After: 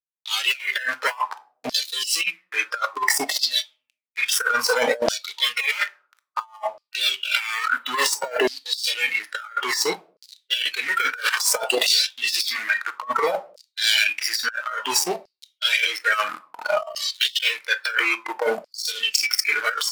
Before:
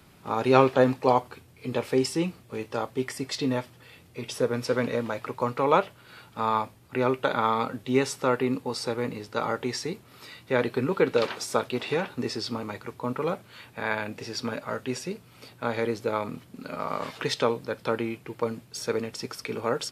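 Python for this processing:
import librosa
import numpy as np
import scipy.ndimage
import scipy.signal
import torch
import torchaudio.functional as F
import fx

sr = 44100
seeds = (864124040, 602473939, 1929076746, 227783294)

y = fx.fuzz(x, sr, gain_db=36.0, gate_db=-38.0)
y = fx.room_shoebox(y, sr, seeds[0], volume_m3=380.0, walls='furnished', distance_m=0.54)
y = fx.noise_reduce_blind(y, sr, reduce_db=15)
y = fx.filter_lfo_highpass(y, sr, shape='saw_down', hz=0.59, low_hz=610.0, high_hz=5000.0, q=7.1)
y = fx.over_compress(y, sr, threshold_db=-22.0, ratio=-0.5)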